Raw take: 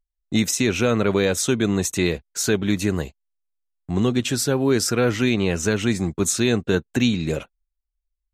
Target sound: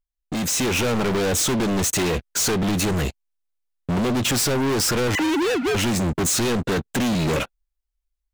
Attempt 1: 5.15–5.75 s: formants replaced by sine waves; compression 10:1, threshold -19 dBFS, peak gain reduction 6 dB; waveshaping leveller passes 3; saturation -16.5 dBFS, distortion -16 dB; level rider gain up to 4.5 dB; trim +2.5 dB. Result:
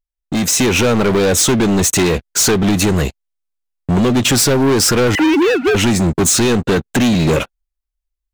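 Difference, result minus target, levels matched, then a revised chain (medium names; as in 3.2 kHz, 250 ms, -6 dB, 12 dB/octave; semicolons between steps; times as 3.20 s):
saturation: distortion -8 dB
5.15–5.75 s: formants replaced by sine waves; compression 10:1, threshold -19 dBFS, peak gain reduction 6 dB; waveshaping leveller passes 3; saturation -27 dBFS, distortion -8 dB; level rider gain up to 4.5 dB; trim +2.5 dB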